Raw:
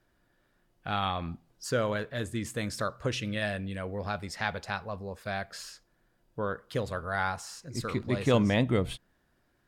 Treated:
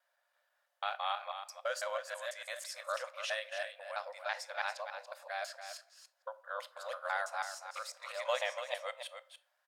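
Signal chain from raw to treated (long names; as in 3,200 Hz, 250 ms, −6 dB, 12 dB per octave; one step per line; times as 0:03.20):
reversed piece by piece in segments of 165 ms
linear-phase brick-wall high-pass 510 Hz
single-tap delay 285 ms −9 dB
rectangular room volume 480 cubic metres, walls furnished, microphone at 0.45 metres
level −4.5 dB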